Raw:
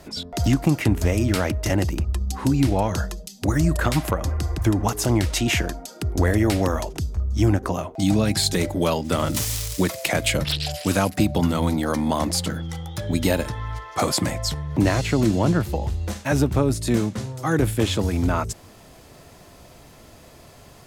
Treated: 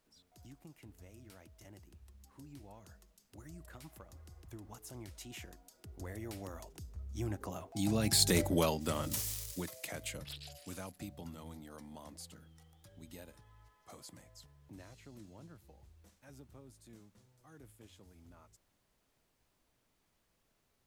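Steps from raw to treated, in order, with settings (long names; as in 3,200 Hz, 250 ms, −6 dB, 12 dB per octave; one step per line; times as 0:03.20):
source passing by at 0:08.40, 10 m/s, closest 2.8 metres
high-shelf EQ 7,500 Hz +9.5 dB
background noise pink −71 dBFS
level −7 dB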